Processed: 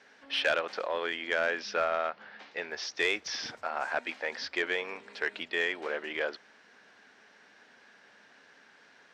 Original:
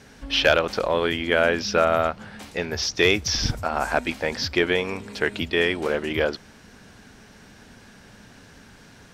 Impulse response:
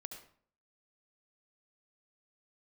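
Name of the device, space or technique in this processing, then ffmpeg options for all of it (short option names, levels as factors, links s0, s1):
intercom: -filter_complex "[0:a]asettb=1/sr,asplit=3[s0][s1][s2];[s0]atrim=end=1.924[s3];[s1]atrim=start=1.92:end=2.61,asetpts=PTS-STARTPTS,afade=t=in:d=0.004:c=qsin,afade=t=out:st=0.686:d=0.004:c=qsin,lowpass=f=5600:w=0.5412,lowpass=f=5600:w=1.3066[s4];[s2]atrim=start=2.606[s5];[s3][s4]acrossfade=d=0.004:c1=hsin:c2=qsin[s6];[s6][s5]acrossfade=d=0.004:c1=qsin:c2=hsin,highpass=450,lowpass=4700,equalizer=f=1800:t=o:w=0.58:g=4.5,asoftclip=type=tanh:threshold=0.335,volume=0.398"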